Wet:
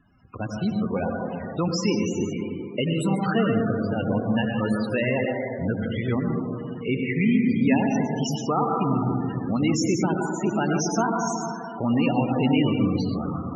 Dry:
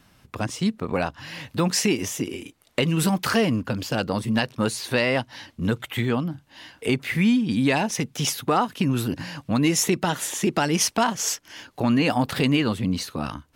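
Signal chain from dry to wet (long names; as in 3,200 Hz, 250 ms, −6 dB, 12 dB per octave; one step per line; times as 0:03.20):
dense smooth reverb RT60 2.7 s, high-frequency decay 0.4×, pre-delay 80 ms, DRR −0.5 dB
spectral peaks only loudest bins 32
level −3 dB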